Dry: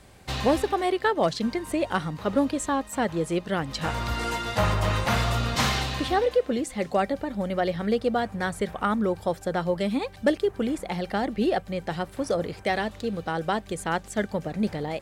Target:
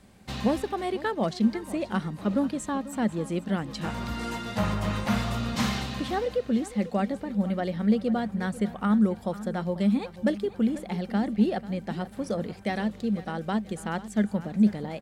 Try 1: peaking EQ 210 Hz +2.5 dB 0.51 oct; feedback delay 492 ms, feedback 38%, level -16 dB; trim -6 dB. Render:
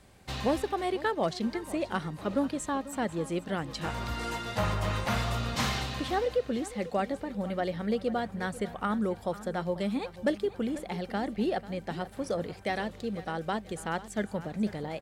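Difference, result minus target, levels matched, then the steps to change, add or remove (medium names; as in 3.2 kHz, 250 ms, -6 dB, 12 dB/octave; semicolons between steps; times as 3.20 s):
250 Hz band -3.5 dB
change: peaking EQ 210 Hz +13 dB 0.51 oct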